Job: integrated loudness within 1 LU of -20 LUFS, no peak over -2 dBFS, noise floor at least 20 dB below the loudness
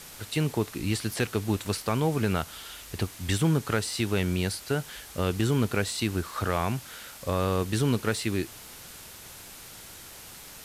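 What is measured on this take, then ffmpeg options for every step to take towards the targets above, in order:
noise floor -46 dBFS; noise floor target -49 dBFS; loudness -28.5 LUFS; peak level -13.5 dBFS; loudness target -20.0 LUFS
-> -af "afftdn=nr=6:nf=-46"
-af "volume=2.66"

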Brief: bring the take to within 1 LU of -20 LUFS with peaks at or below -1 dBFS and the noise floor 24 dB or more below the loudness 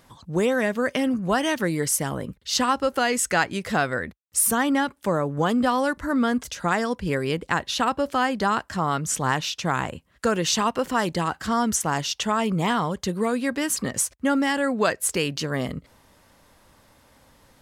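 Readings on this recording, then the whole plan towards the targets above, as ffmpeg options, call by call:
loudness -24.0 LUFS; peak level -7.0 dBFS; loudness target -20.0 LUFS
-> -af "volume=1.58"

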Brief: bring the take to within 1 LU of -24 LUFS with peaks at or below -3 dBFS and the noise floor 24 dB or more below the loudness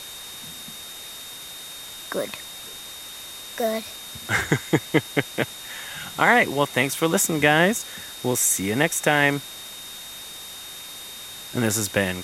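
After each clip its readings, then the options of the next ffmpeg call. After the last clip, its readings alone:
steady tone 3.7 kHz; tone level -39 dBFS; noise floor -39 dBFS; noise floor target -47 dBFS; loudness -22.5 LUFS; peak level -3.0 dBFS; loudness target -24.0 LUFS
-> -af "bandreject=f=3700:w=30"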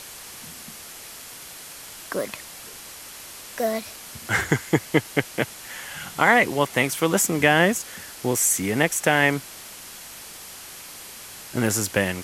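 steady tone not found; noise floor -41 dBFS; noise floor target -46 dBFS
-> -af "afftdn=nr=6:nf=-41"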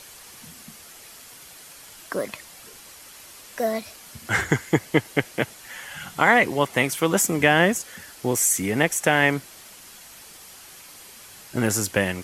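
noise floor -46 dBFS; loudness -22.0 LUFS; peak level -3.0 dBFS; loudness target -24.0 LUFS
-> -af "volume=0.794"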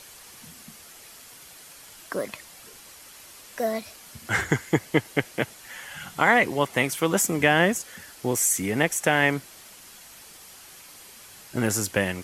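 loudness -24.0 LUFS; peak level -5.0 dBFS; noise floor -48 dBFS

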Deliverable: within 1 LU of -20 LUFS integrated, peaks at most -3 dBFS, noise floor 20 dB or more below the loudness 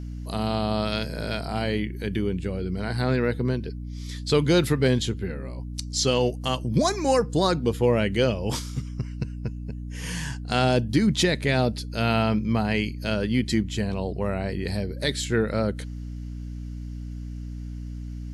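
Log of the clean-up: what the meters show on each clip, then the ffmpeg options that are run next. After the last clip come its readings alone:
hum 60 Hz; highest harmonic 300 Hz; hum level -32 dBFS; loudness -25.5 LUFS; peak level -9.5 dBFS; loudness target -20.0 LUFS
-> -af "bandreject=f=60:t=h:w=4,bandreject=f=120:t=h:w=4,bandreject=f=180:t=h:w=4,bandreject=f=240:t=h:w=4,bandreject=f=300:t=h:w=4"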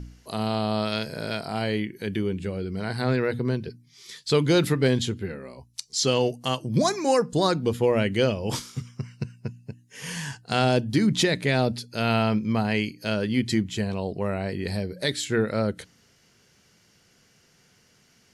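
hum not found; loudness -25.5 LUFS; peak level -9.5 dBFS; loudness target -20.0 LUFS
-> -af "volume=1.88"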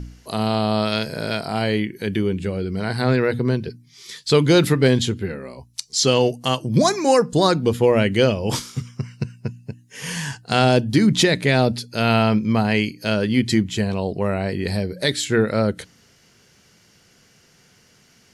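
loudness -20.0 LUFS; peak level -4.0 dBFS; noise floor -56 dBFS

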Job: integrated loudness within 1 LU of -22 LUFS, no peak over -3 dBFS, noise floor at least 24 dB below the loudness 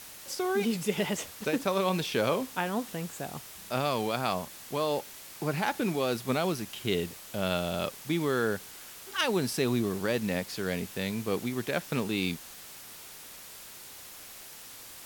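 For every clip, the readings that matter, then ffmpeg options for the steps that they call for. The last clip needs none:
noise floor -47 dBFS; noise floor target -55 dBFS; loudness -31.0 LUFS; peak level -13.0 dBFS; loudness target -22.0 LUFS
-> -af "afftdn=nr=8:nf=-47"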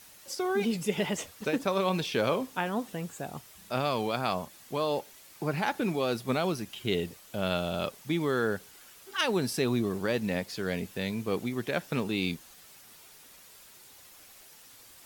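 noise floor -54 dBFS; noise floor target -55 dBFS
-> -af "afftdn=nr=6:nf=-54"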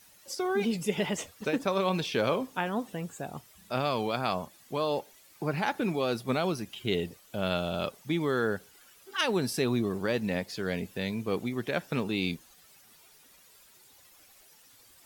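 noise floor -58 dBFS; loudness -31.0 LUFS; peak level -13.5 dBFS; loudness target -22.0 LUFS
-> -af "volume=2.82"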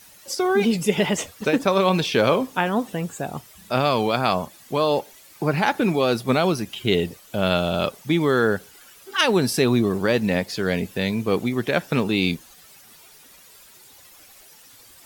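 loudness -22.0 LUFS; peak level -4.5 dBFS; noise floor -49 dBFS

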